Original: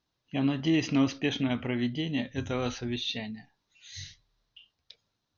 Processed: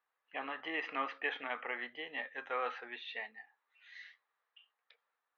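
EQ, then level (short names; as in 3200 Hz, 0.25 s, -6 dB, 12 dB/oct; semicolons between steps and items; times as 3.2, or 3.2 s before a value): speaker cabinet 400–2100 Hz, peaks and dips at 480 Hz +10 dB, 810 Hz +8 dB, 1200 Hz +9 dB, 1800 Hz +6 dB; differentiator; +10.0 dB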